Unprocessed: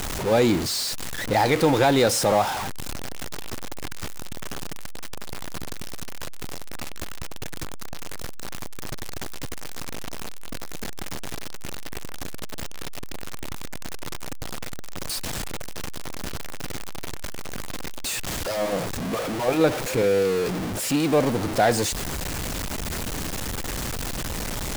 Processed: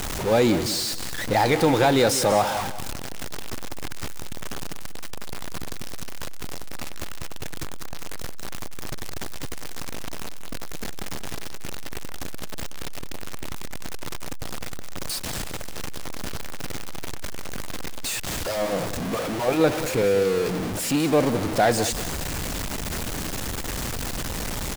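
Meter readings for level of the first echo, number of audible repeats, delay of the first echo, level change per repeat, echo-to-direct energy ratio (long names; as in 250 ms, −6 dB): −13.0 dB, 3, 190 ms, −10.5 dB, −12.5 dB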